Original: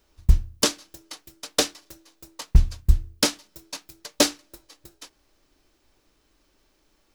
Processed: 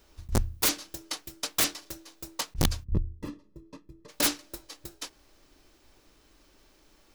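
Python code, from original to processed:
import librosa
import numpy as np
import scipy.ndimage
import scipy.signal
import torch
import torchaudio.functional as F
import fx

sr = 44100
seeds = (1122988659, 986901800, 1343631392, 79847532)

y = fx.over_compress(x, sr, threshold_db=-20.0, ratio=-0.5)
y = (np.mod(10.0 ** (16.5 / 20.0) * y + 1.0, 2.0) - 1.0) / 10.0 ** (16.5 / 20.0)
y = fx.moving_average(y, sr, points=59, at=(2.83, 4.08), fade=0.02)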